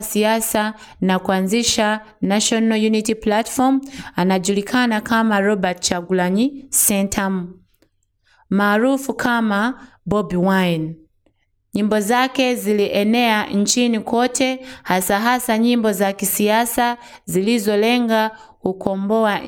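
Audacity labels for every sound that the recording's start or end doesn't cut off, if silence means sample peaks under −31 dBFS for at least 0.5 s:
8.510000	10.930000	sound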